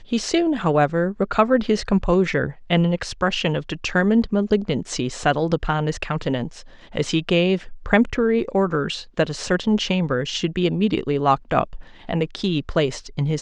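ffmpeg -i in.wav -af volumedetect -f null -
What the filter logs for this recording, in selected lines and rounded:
mean_volume: -21.2 dB
max_volume: -3.5 dB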